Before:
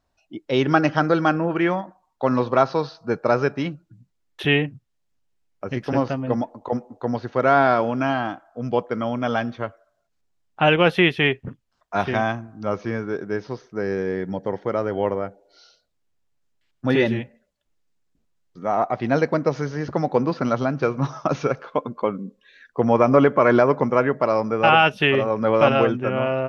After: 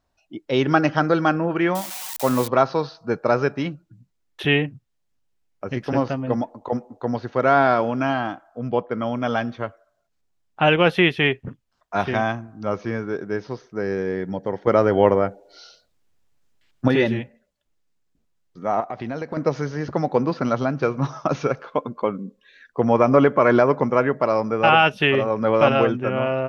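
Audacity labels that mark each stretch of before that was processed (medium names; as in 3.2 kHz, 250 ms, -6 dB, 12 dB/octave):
1.750000	2.480000	zero-crossing glitches of -18 dBFS
8.590000	9.020000	distance through air 160 m
14.670000	16.880000	gain +7 dB
18.800000	19.370000	compression, threshold -25 dBFS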